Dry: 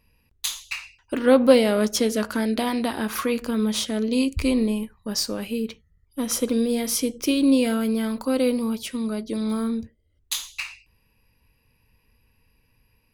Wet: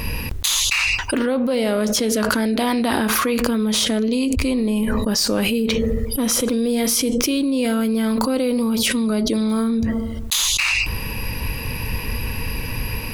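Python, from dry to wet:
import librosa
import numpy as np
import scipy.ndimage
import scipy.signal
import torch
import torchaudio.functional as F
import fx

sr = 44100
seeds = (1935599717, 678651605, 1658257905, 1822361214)

y = fx.rider(x, sr, range_db=4, speed_s=0.5)
y = fx.echo_wet_bandpass(y, sr, ms=72, feedback_pct=64, hz=420.0, wet_db=-23.5)
y = fx.env_flatten(y, sr, amount_pct=100)
y = F.gain(torch.from_numpy(y), -5.5).numpy()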